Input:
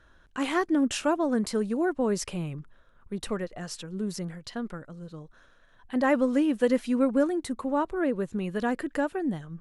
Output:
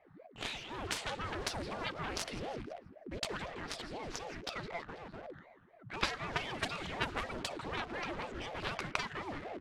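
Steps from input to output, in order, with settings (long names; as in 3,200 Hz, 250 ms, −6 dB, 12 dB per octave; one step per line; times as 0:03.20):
rippled gain that drifts along the octave scale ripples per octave 0.92, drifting −1.4 Hz, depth 11 dB
echo with shifted repeats 163 ms, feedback 49%, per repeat −76 Hz, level −15 dB
healed spectral selection 0:00.33–0:00.78, 360–2,200 Hz both
in parallel at −3.5 dB: bit reduction 7 bits
on the sum: guitar amp tone stack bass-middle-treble 10-0-10
downward compressor 12 to 1, threshold −34 dBFS, peak gain reduction 12 dB
on a send at −19.5 dB: convolution reverb RT60 1.1 s, pre-delay 102 ms
on the sum: harmonic generator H 3 −11 dB, 4 −23 dB, 5 −13 dB, 7 −12 dB, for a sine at −19 dBFS
low-pass that shuts in the quiet parts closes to 1,100 Hz, open at −38.5 dBFS
ring modulator whose carrier an LFO sweeps 410 Hz, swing 70%, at 4 Hz
level +14.5 dB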